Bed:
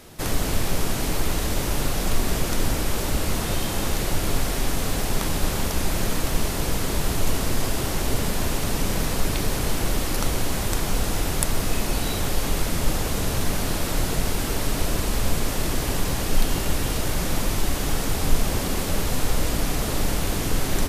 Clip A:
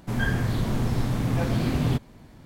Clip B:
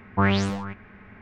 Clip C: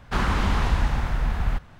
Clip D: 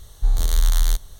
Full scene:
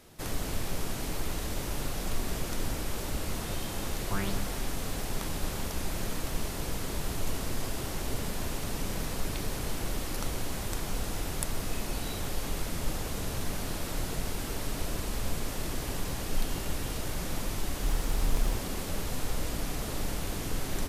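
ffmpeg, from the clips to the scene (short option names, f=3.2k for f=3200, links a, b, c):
-filter_complex "[0:a]volume=-9.5dB[a];[4:a]acrusher=samples=37:mix=1:aa=0.000001:lfo=1:lforange=22.2:lforate=3.5[b];[2:a]atrim=end=1.21,asetpts=PTS-STARTPTS,volume=-14dB,afade=t=in:d=0.004:c=hsin,afade=t=out:st=1.206:d=0.004:c=hsin,adelay=173313S[c];[b]atrim=end=1.19,asetpts=PTS-STARTPTS,volume=-13.5dB,afade=t=in:d=0.004:c=hsin,afade=t=out:st=1.186:d=0.004:c=hsin,adelay=17600[d];[a][c][d]amix=inputs=3:normalize=0"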